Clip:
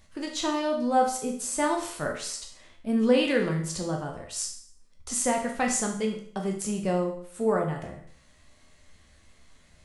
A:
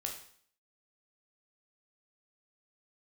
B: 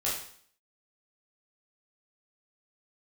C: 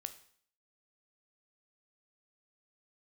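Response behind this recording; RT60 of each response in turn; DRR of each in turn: A; 0.55, 0.55, 0.55 s; 0.5, -7.5, 9.0 dB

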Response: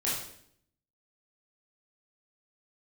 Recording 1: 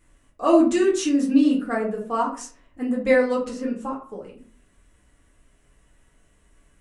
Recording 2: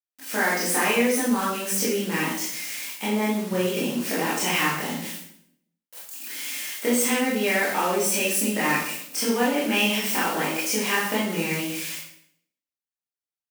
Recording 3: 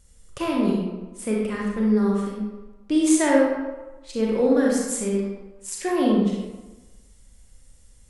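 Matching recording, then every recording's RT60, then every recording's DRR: 2; 0.45, 0.65, 1.2 s; -4.5, -8.0, -3.0 dB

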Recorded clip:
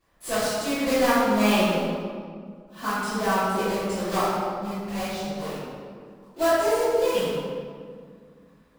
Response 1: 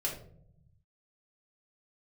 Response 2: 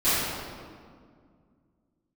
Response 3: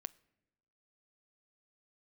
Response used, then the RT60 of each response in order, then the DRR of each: 2; 0.70, 2.0, 1.0 s; -3.5, -18.0, 19.5 dB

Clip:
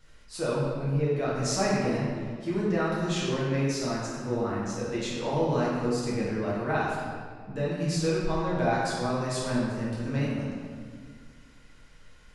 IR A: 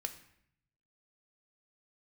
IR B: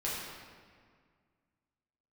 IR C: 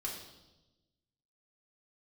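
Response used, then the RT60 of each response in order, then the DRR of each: B; 0.70, 1.9, 1.0 s; 6.0, -8.0, -4.0 dB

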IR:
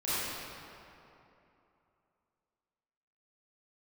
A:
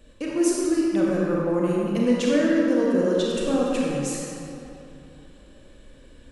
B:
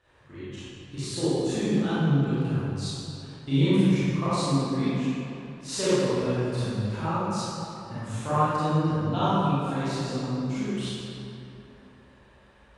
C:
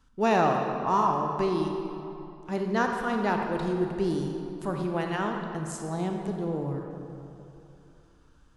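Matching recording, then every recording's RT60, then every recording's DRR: B; 2.9, 2.9, 2.9 s; -5.0, -13.5, 2.0 dB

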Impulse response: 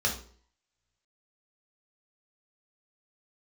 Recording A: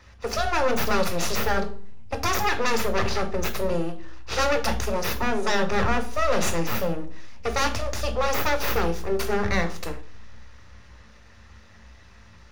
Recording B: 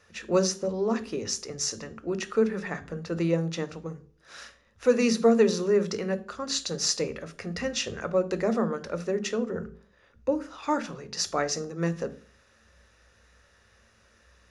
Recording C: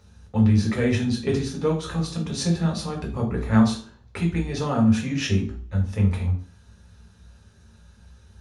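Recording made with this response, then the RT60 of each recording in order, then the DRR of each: C; 0.50, 0.50, 0.50 s; 5.5, 10.5, -2.0 dB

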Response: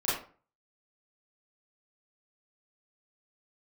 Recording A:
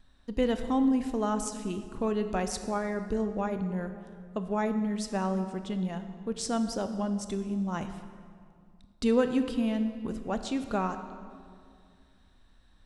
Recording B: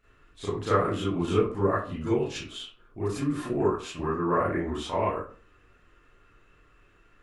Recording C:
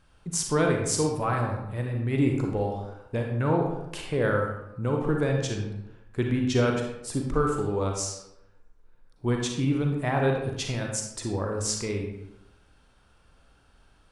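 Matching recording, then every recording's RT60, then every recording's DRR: B; 2.2, 0.40, 0.85 s; 8.5, -11.0, 1.0 dB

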